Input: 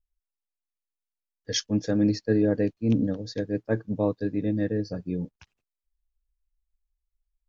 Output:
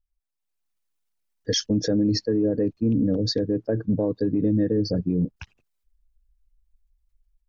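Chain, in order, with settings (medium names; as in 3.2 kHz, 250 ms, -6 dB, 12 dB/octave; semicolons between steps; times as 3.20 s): resonances exaggerated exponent 1.5; compression, threshold -24 dBFS, peak gain reduction 7 dB; peak limiter -28 dBFS, peak gain reduction 11 dB; level rider gain up to 11.5 dB; trim +2 dB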